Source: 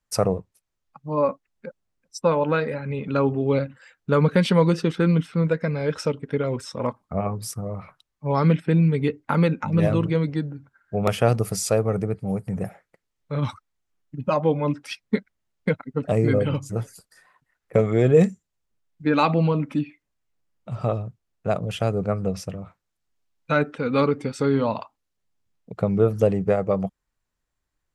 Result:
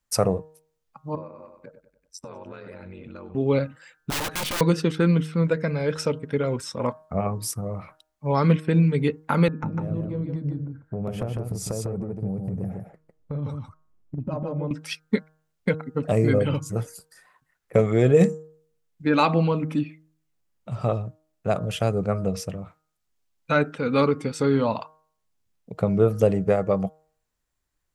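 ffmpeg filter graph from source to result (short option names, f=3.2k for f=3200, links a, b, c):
-filter_complex "[0:a]asettb=1/sr,asplit=3[a][b][c];[a]atrim=end=1.154[d];[b]atrim=start=1.15:end=3.35,asetpts=PTS-STARTPTS,afade=t=in:d=0.004:c=qsin,afade=t=out:st=2.196:d=0.004:c=qsin,aecho=1:1:96|192|288|384:0.178|0.08|0.036|0.0162,atrim=end_sample=97020,acompressor=threshold=-35dB:ratio=6:attack=3.2:release=140:knee=1:detection=peak,aeval=exprs='val(0)*sin(2*PI*46*n/s)':c=same[e];[c]atrim=start=3.346[f];[d][e]acrossfade=d=0.004:c1=hsin:c2=qsin[g];[g][f]acrossfade=d=0.004:c1=qsin:c2=hsin,asettb=1/sr,asplit=3[h][i][j];[h]atrim=end=4.104[k];[i]atrim=start=4.1:end=4.61,asetpts=PTS-STARTPTS,afade=t=in:d=0.004:c=qsin,afade=t=out:st=0.506:d=0.004:c=qsin,aeval=exprs='(mod(8.91*val(0)+1,2)-1)/8.91':c=same,aeval=exprs='(tanh(20*val(0)+0.4)-tanh(0.4))/20':c=same[l];[j]atrim=start=4.606[m];[k][l]acrossfade=d=0.004:c1=hsin:c2=qsin[n];[n][m]acrossfade=d=0.004:c1=qsin:c2=hsin,asettb=1/sr,asplit=3[o][p][q];[o]atrim=end=9.484[r];[p]atrim=start=9.48:end=14.71,asetpts=PTS-STARTPTS,afade=t=in:d=0.004:c=qsin,afade=t=out:st=5.226:d=0.004:c=qsin,tiltshelf=f=870:g=10,acompressor=threshold=-26dB:ratio=8:attack=3.2:release=140:knee=1:detection=peak,aecho=1:1:152:0.631,atrim=end_sample=230643[s];[q]atrim=start=14.706[t];[r][s]acrossfade=d=0.004:c1=hsin:c2=qsin[u];[u][t]acrossfade=d=0.004:c1=qsin:c2=hsin,highshelf=f=6.4k:g=5.5,bandreject=f=156.2:t=h:w=4,bandreject=f=312.4:t=h:w=4,bandreject=f=468.6:t=h:w=4,bandreject=f=624.8:t=h:w=4,bandreject=f=781:t=h:w=4,bandreject=f=937.2:t=h:w=4,bandreject=f=1.0934k:t=h:w=4,bandreject=f=1.2496k:t=h:w=4,bandreject=f=1.4058k:t=h:w=4,bandreject=f=1.562k:t=h:w=4,bandreject=f=1.7182k:t=h:w=4"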